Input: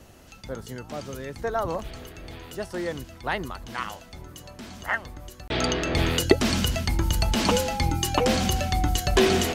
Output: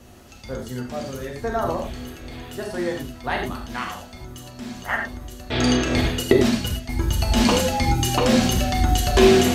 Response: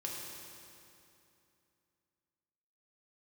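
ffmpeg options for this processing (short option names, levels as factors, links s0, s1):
-filter_complex "[0:a]asettb=1/sr,asplit=3[s0][s1][s2];[s0]atrim=end=6.014[s3];[s1]atrim=start=6.01:end=7.27,asetpts=PTS-STARTPTS,afade=t=in:d=0.004:c=qsin,afade=t=out:st=1.256:d=0.004:c=qsin,agate=range=0.224:threshold=0.0794:ratio=16:detection=peak[s4];[s2]atrim=start=7.266[s5];[s3][s4]acrossfade=d=0.004:c1=hsin:c2=qsin[s6];[s6][s5]acrossfade=d=0.004:c1=qsin:c2=hsin[s7];[1:a]atrim=start_sample=2205,atrim=end_sample=3528,asetrate=30429,aresample=44100[s8];[s7][s8]afir=irnorm=-1:irlink=0,volume=1.33"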